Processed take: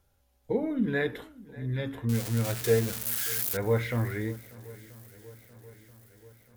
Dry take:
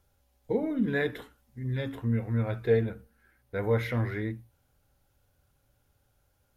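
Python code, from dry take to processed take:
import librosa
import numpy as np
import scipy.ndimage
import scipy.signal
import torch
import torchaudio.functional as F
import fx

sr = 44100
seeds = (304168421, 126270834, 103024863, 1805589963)

y = fx.crossing_spikes(x, sr, level_db=-20.0, at=(2.09, 3.57))
y = fx.echo_swing(y, sr, ms=982, ratio=1.5, feedback_pct=54, wet_db=-21.5)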